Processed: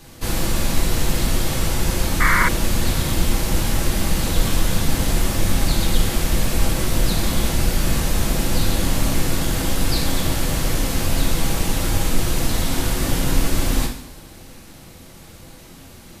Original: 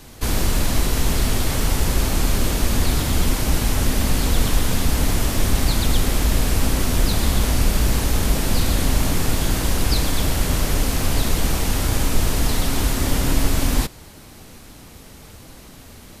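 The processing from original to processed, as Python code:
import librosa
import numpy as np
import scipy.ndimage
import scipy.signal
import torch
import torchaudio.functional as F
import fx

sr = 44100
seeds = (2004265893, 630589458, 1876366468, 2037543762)

y = fx.rev_double_slope(x, sr, seeds[0], early_s=0.57, late_s=2.2, knee_db=-18, drr_db=0.0)
y = fx.spec_paint(y, sr, seeds[1], shape='noise', start_s=2.2, length_s=0.29, low_hz=920.0, high_hz=2300.0, level_db=-15.0)
y = y * 10.0 ** (-3.0 / 20.0)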